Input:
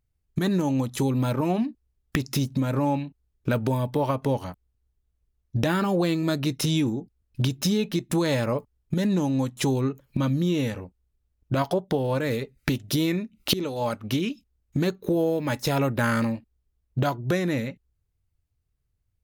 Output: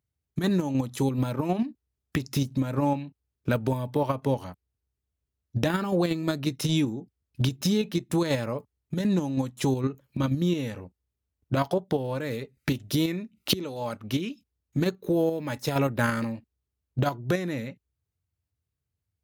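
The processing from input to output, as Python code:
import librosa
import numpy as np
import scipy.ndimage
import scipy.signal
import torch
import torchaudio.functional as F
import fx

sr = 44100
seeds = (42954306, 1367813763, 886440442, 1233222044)

p1 = scipy.signal.sosfilt(scipy.signal.butter(4, 68.0, 'highpass', fs=sr, output='sos'), x)
p2 = fx.level_steps(p1, sr, step_db=23)
p3 = p1 + F.gain(torch.from_numpy(p2), 0.0).numpy()
y = F.gain(torch.from_numpy(p3), -6.0).numpy()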